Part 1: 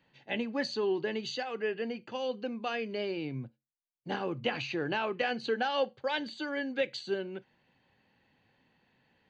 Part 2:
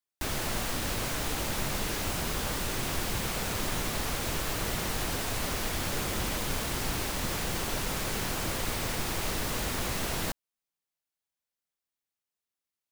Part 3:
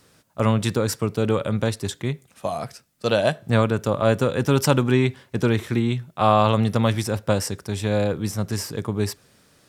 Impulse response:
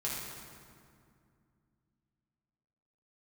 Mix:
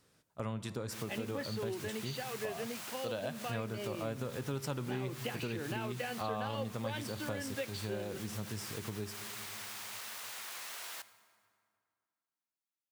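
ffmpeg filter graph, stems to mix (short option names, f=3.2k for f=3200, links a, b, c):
-filter_complex "[0:a]adelay=800,volume=-3dB[a];[1:a]acrusher=bits=2:mode=log:mix=0:aa=0.000001,highpass=1k,adelay=700,volume=-11dB,asplit=2[b][c];[c]volume=-15.5dB[d];[2:a]volume=-14dB,asplit=3[e][f][g];[f]volume=-16.5dB[h];[g]apad=whole_len=600506[i];[b][i]sidechaincompress=threshold=-39dB:ratio=8:attack=16:release=149[j];[3:a]atrim=start_sample=2205[k];[d][h]amix=inputs=2:normalize=0[l];[l][k]afir=irnorm=-1:irlink=0[m];[a][j][e][m]amix=inputs=4:normalize=0,acompressor=threshold=-37dB:ratio=2.5"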